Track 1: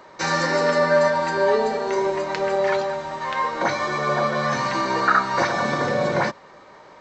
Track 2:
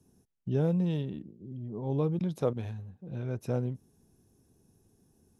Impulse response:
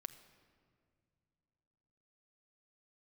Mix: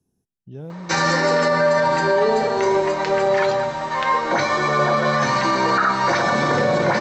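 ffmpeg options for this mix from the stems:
-filter_complex "[0:a]adelay=700,volume=2dB,asplit=2[a][b];[b]volume=-4dB[c];[1:a]volume=-9.5dB,asplit=2[d][e];[e]volume=-7.5dB[f];[2:a]atrim=start_sample=2205[g];[c][f]amix=inputs=2:normalize=0[h];[h][g]afir=irnorm=-1:irlink=0[i];[a][d][i]amix=inputs=3:normalize=0,alimiter=limit=-9.5dB:level=0:latency=1:release=22"

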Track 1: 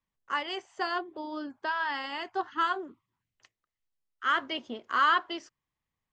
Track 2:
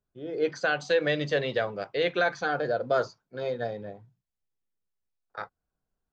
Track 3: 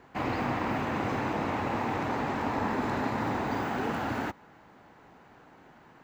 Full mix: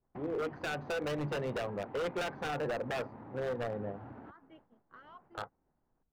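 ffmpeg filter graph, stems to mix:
-filter_complex "[0:a]asplit=2[a][b];[b]afreqshift=2.2[c];[a][c]amix=inputs=2:normalize=1,volume=-15dB[d];[1:a]bass=f=250:g=2,treble=f=4k:g=-9,acompressor=threshold=-33dB:ratio=2,volume=1dB[e];[2:a]volume=-6dB[f];[d][f]amix=inputs=2:normalize=0,agate=range=-33dB:threshold=-49dB:ratio=3:detection=peak,acompressor=threshold=-44dB:ratio=12,volume=0dB[g];[e][g]amix=inputs=2:normalize=0,adynamicsmooth=sensitivity=1.5:basefreq=1.1k,aeval=exprs='0.0355*(abs(mod(val(0)/0.0355+3,4)-2)-1)':c=same"

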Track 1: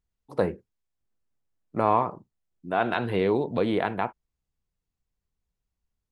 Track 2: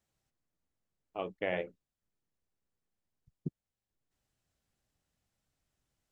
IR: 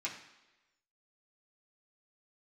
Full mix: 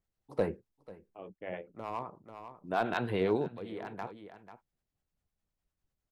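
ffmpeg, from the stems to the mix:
-filter_complex "[0:a]asoftclip=type=hard:threshold=-13.5dB,volume=-3dB,asplit=2[a][b];[b]volume=-19.5dB[c];[1:a]highshelf=f=2.6k:g=-11,tremolo=f=4.6:d=0.5,volume=-1.5dB,asplit=2[d][e];[e]apad=whole_len=269680[f];[a][f]sidechaincompress=threshold=-46dB:ratio=8:attack=6.2:release=858[g];[c]aecho=0:1:491:1[h];[g][d][h]amix=inputs=3:normalize=0,acrossover=split=630[i][j];[i]aeval=exprs='val(0)*(1-0.5/2+0.5/2*cos(2*PI*9.9*n/s))':c=same[k];[j]aeval=exprs='val(0)*(1-0.5/2-0.5/2*cos(2*PI*9.9*n/s))':c=same[l];[k][l]amix=inputs=2:normalize=0"

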